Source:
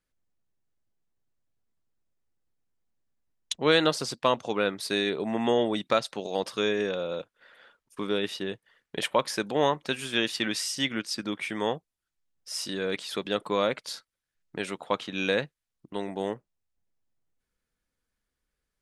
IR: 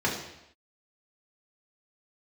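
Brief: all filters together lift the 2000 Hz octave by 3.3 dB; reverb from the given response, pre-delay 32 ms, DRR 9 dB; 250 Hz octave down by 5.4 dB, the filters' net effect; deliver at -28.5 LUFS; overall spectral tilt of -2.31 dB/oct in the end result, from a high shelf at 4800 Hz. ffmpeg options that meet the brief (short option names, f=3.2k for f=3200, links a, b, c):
-filter_complex "[0:a]equalizer=f=250:t=o:g=-7.5,equalizer=f=2k:t=o:g=3.5,highshelf=f=4.8k:g=5,asplit=2[a][b];[1:a]atrim=start_sample=2205,adelay=32[c];[b][c]afir=irnorm=-1:irlink=0,volume=-21dB[d];[a][d]amix=inputs=2:normalize=0,volume=-1dB"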